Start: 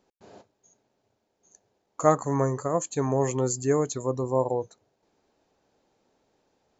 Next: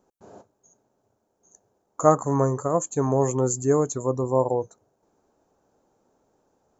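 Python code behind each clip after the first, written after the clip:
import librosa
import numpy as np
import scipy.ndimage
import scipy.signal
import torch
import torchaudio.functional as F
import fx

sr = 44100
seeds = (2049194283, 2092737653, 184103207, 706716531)

y = fx.band_shelf(x, sr, hz=3000.0, db=-11.0, octaves=1.7)
y = y * librosa.db_to_amplitude(3.0)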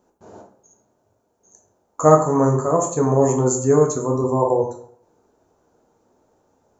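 y = fx.rev_plate(x, sr, seeds[0], rt60_s=0.62, hf_ratio=0.6, predelay_ms=0, drr_db=0.5)
y = y * librosa.db_to_amplitude(2.5)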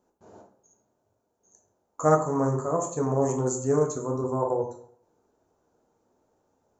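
y = fx.doppler_dist(x, sr, depth_ms=0.11)
y = y * librosa.db_to_amplitude(-8.0)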